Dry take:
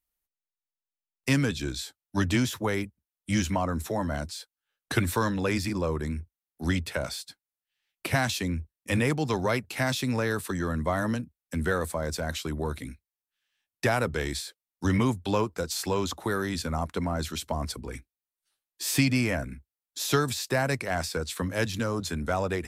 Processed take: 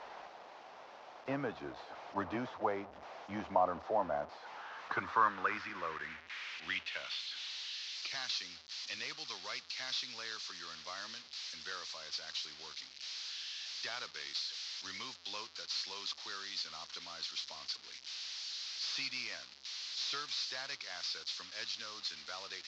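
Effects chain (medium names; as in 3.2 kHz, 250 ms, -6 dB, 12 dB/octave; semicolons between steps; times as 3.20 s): one-bit delta coder 32 kbps, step -32.5 dBFS; dynamic bell 1.2 kHz, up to +5 dB, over -46 dBFS, Q 3.7; band-pass sweep 730 Hz -> 4.5 kHz, 4.22–7.85 s; trim +1 dB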